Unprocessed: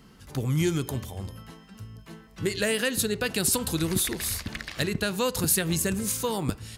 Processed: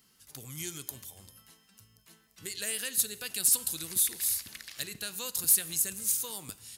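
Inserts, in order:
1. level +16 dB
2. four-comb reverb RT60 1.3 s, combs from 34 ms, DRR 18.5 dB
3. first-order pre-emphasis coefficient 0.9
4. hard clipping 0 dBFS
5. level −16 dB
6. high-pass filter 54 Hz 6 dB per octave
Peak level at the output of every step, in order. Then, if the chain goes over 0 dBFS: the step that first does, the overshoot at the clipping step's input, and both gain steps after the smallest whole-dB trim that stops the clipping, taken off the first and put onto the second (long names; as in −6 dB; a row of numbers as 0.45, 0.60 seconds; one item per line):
+4.5, +4.5, +5.5, 0.0, −16.0, −16.0 dBFS
step 1, 5.5 dB
step 1 +10 dB, step 5 −10 dB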